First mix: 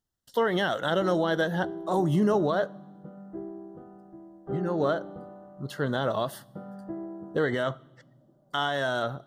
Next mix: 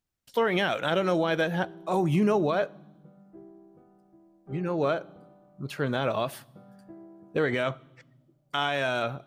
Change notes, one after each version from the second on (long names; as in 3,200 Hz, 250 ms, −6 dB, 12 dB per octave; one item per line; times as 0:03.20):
background −10.5 dB
master: remove Butterworth band-reject 2,400 Hz, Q 2.7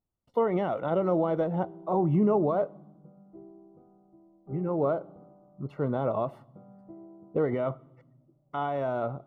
master: add Savitzky-Golay smoothing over 65 samples